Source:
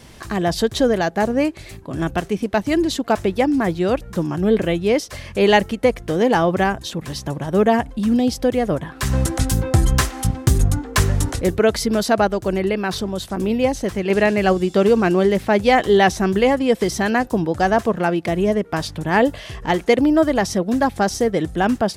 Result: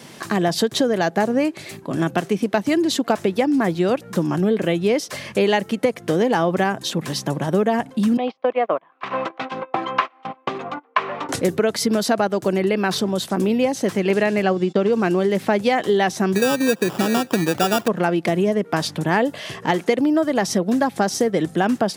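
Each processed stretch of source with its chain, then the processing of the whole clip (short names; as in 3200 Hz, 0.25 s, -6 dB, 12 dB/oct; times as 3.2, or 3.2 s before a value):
8.17–11.29 gate -21 dBFS, range -25 dB + speaker cabinet 500–3000 Hz, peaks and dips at 660 Hz +5 dB, 1100 Hz +10 dB, 1700 Hz -4 dB, 2400 Hz +4 dB
14.42–14.93 gate -31 dBFS, range -22 dB + air absorption 100 m
16.35–17.88 CVSD 64 kbps + high shelf 3800 Hz -10.5 dB + sample-rate reducer 2100 Hz
whole clip: compressor, threshold -19 dBFS; HPF 140 Hz 24 dB/oct; gain +4 dB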